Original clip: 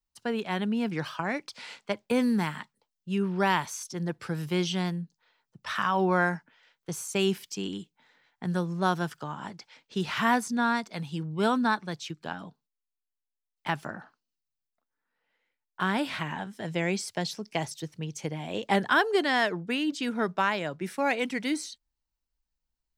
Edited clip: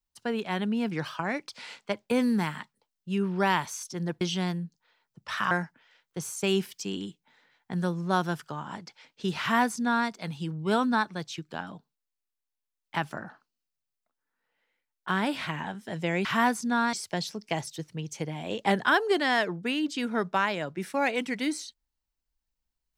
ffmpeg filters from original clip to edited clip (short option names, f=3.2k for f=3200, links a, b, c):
-filter_complex "[0:a]asplit=5[a][b][c][d][e];[a]atrim=end=4.212[f];[b]atrim=start=4.588:end=5.892[g];[c]atrim=start=6.228:end=16.972[h];[d]atrim=start=10.118:end=10.802[i];[e]atrim=start=16.968[j];[f][g]acrossfade=d=0.004:c1=hsin:c2=hsin[k];[k][h]acrossfade=d=0.004:c1=hsin:c2=hsin[l];[l][i]acrossfade=d=0.004:c1=hsin:c2=hsin[m];[m][j]acrossfade=d=0.004:c1=hsin:c2=hsin"